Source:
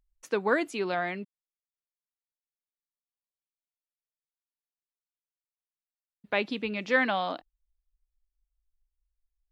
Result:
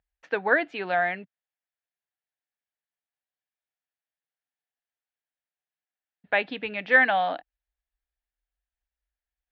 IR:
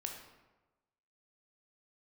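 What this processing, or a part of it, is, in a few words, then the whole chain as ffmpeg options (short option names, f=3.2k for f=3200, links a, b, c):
guitar cabinet: -af "highpass=78,equalizer=f=130:t=q:w=4:g=-7,equalizer=f=220:t=q:w=4:g=-9,equalizer=f=370:t=q:w=4:g=-8,equalizer=f=740:t=q:w=4:g=6,equalizer=f=1.1k:t=q:w=4:g=-6,equalizer=f=1.7k:t=q:w=4:g=8,lowpass=f=3.5k:w=0.5412,lowpass=f=3.5k:w=1.3066,volume=2.5dB"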